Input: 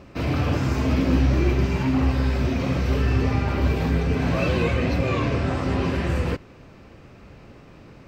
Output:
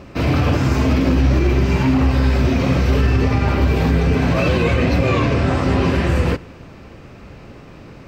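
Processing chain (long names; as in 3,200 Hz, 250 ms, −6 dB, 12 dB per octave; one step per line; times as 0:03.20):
on a send at −23 dB: convolution reverb RT60 1.9 s, pre-delay 36 ms
on the sum: boost into a limiter +13 dB
level −6 dB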